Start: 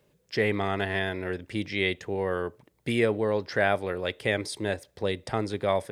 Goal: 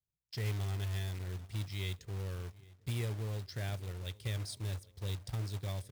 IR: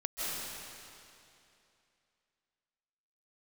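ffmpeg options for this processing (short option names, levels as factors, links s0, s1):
-filter_complex "[0:a]agate=range=0.0794:threshold=0.00224:ratio=16:detection=peak,firequalizer=gain_entry='entry(100,0);entry(210,-19);entry(530,-25);entry(1600,-25);entry(3900,-10)':delay=0.05:min_phase=1,asplit=2[s0][s1];[s1]adelay=806,lowpass=f=1800:p=1,volume=0.0891,asplit=2[s2][s3];[s3]adelay=806,lowpass=f=1800:p=1,volume=0.5,asplit=2[s4][s5];[s5]adelay=806,lowpass=f=1800:p=1,volume=0.5,asplit=2[s6][s7];[s7]adelay=806,lowpass=f=1800:p=1,volume=0.5[s8];[s0][s2][s4][s6][s8]amix=inputs=5:normalize=0,acrusher=bits=3:mode=log:mix=0:aa=0.000001,volume=1.26"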